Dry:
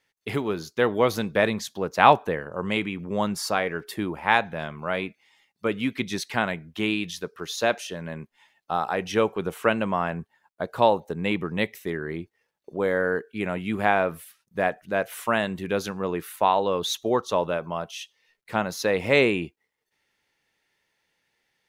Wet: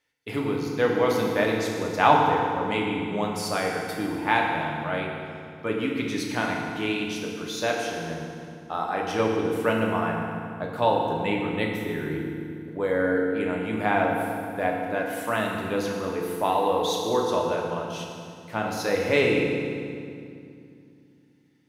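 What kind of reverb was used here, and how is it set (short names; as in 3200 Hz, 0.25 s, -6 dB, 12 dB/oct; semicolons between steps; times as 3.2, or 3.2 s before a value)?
FDN reverb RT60 2.4 s, low-frequency decay 1.5×, high-frequency decay 0.8×, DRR -1.5 dB; gain -4.5 dB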